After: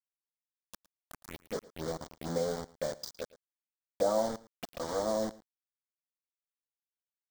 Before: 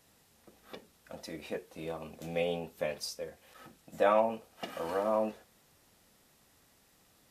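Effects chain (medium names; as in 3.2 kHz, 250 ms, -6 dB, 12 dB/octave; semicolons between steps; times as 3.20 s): low-pass that closes with the level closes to 760 Hz, closed at -25 dBFS; 1.55–2.38 s: tilt shelf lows +4 dB, about 940 Hz; bit crusher 6-bit; touch-sensitive phaser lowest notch 320 Hz, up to 2.6 kHz, full sweep at -35.5 dBFS; delay 111 ms -20.5 dB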